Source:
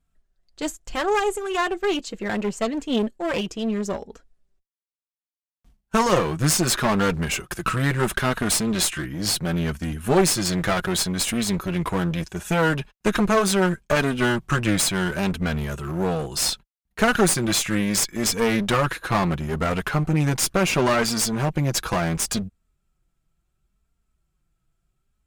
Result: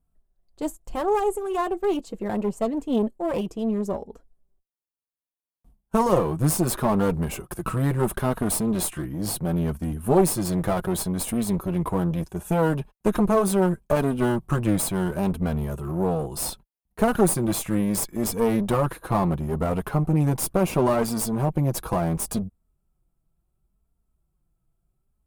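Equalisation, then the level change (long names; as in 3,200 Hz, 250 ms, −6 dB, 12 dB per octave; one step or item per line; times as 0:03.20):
flat-topped bell 3,200 Hz −12.5 dB 2.7 octaves
0.0 dB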